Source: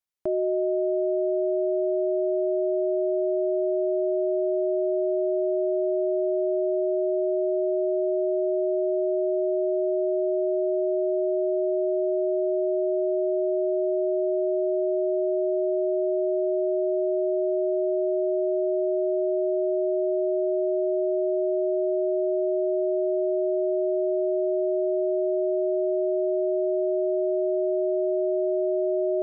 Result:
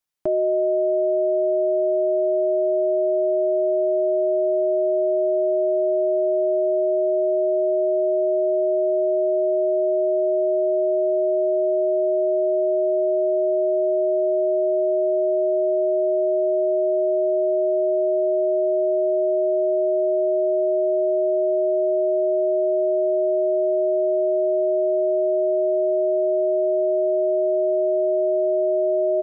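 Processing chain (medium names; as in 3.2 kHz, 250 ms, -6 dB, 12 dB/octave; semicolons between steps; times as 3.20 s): comb 6.7 ms, depth 38%; trim +4.5 dB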